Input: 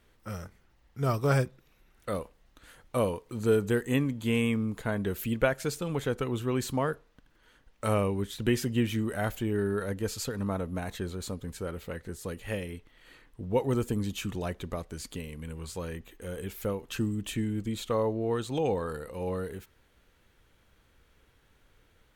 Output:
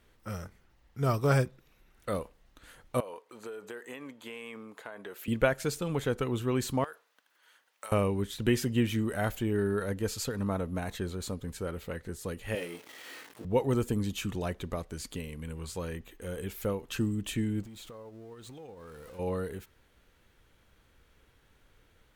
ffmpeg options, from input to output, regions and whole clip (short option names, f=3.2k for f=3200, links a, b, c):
-filter_complex "[0:a]asettb=1/sr,asplit=3[a][b][c];[a]atrim=end=3.004[d];[b]atrim=start=3:end=5.28,asetpts=PTS-STARTPTS,afade=t=in:d=0.004:c=qsin,afade=t=out:st=2.276:d=0.004:c=qsin,highpass=580,highshelf=f=3k:g=-8.5,acompressor=threshold=-37dB:ratio=12:attack=3.2:release=140:knee=1:detection=peak[e];[c]atrim=start=5.276[f];[d][e]acrossfade=d=0.004:c1=hsin:c2=qsin[g];[g][f]acrossfade=d=0.004:c1=qsin:c2=hsin,asettb=1/sr,asplit=3[h][i][j];[h]atrim=end=6.844[k];[i]atrim=start=6.84:end=7.92,asetpts=PTS-STARTPTS,afade=t=in:d=0.004:c=qsin,afade=t=out:st=1.076:d=0.004:c=qsin,highpass=770,highshelf=f=8.6k:g=7,acompressor=threshold=-38dB:ratio=10:attack=3.2:release=140:knee=1:detection=peak[l];[j]atrim=start=7.916[m];[k][l]acrossfade=d=0.004:c1=hsin:c2=qsin[n];[n][m]acrossfade=d=0.004:c1=qsin:c2=hsin,asettb=1/sr,asplit=3[o][p][q];[o]atrim=end=12.554[r];[p]atrim=start=12.55:end=13.45,asetpts=PTS-STARTPTS,afade=t=in:d=0.004:c=qsin,afade=t=out:st=0.896:d=0.004:c=qsin,aeval=exprs='val(0)+0.5*0.00668*sgn(val(0))':c=same,highpass=300,asplit=2[s][t];[t]adelay=18,volume=-7dB[u];[s][u]amix=inputs=2:normalize=0,atrim=end_sample=39690[v];[q]atrim=start=13.446[w];[r][v]acrossfade=d=0.004:c1=hsin:c2=qsin[x];[x][w]acrossfade=d=0.004:c1=qsin:c2=hsin,asettb=1/sr,asplit=3[y][z][aa];[y]atrim=end=17.634[ab];[z]atrim=start=17.63:end=19.19,asetpts=PTS-STARTPTS,afade=t=in:d=0.004:c=qsin,afade=t=out:st=1.556:d=0.004:c=qsin,aeval=exprs='val(0)+0.5*0.0119*sgn(val(0))':c=same,agate=range=-10dB:threshold=-26dB:ratio=16:release=100:detection=peak,acompressor=threshold=-43dB:ratio=12:attack=3.2:release=140:knee=1:detection=peak[ac];[aa]atrim=start=19.186[ad];[ab][ac]acrossfade=d=0.004:c1=hsin:c2=qsin[ae];[ae][ad]acrossfade=d=0.004:c1=qsin:c2=hsin"